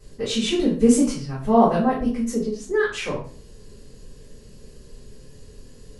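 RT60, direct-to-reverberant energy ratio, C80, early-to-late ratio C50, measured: 0.40 s, −10.0 dB, 10.5 dB, 5.5 dB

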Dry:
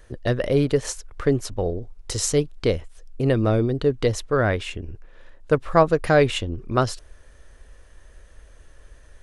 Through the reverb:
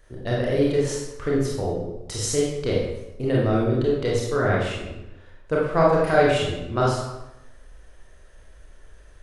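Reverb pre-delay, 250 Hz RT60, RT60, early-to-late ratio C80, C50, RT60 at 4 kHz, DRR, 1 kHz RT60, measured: 26 ms, 0.95 s, 0.95 s, 3.5 dB, 0.0 dB, 0.70 s, −5.0 dB, 0.95 s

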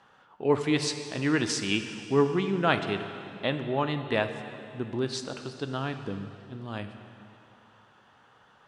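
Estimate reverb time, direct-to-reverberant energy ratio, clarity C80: 2.9 s, 7.5 dB, 9.5 dB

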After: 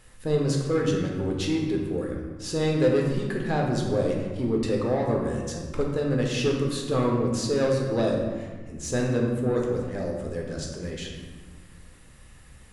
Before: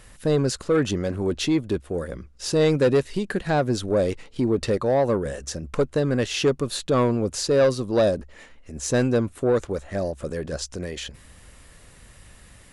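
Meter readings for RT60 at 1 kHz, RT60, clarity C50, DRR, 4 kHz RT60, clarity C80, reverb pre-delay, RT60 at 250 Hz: 1.5 s, 1.6 s, 2.5 dB, −1.0 dB, 0.90 s, 4.5 dB, 5 ms, 2.6 s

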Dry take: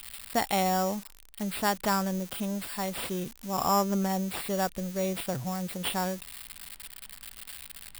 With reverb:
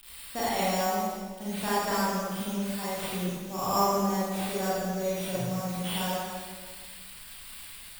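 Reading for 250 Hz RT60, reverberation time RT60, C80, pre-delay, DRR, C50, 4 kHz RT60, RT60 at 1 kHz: 1.7 s, 1.5 s, −1.5 dB, 30 ms, −10.0 dB, −5.0 dB, 1.3 s, 1.5 s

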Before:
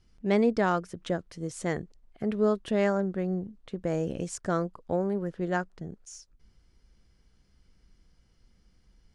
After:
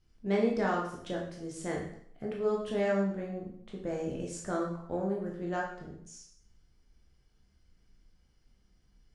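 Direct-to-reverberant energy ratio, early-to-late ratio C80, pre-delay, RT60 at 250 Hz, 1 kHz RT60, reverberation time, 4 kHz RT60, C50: −2.5 dB, 8.0 dB, 7 ms, 0.65 s, 0.65 s, 0.65 s, 0.60 s, 4.0 dB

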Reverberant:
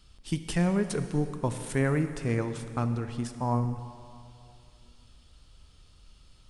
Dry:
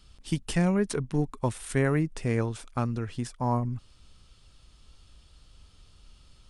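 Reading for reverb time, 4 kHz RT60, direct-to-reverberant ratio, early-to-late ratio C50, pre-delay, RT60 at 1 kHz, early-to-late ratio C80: 2.5 s, 2.2 s, 9.0 dB, 9.5 dB, 19 ms, 2.5 s, 10.5 dB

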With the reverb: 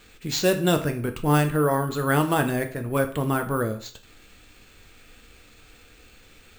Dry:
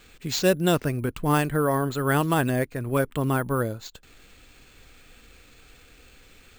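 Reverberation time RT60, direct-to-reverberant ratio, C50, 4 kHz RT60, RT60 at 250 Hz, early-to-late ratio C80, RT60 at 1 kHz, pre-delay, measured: 0.45 s, 6.0 dB, 12.5 dB, 0.45 s, 0.45 s, 16.5 dB, 0.45 s, 4 ms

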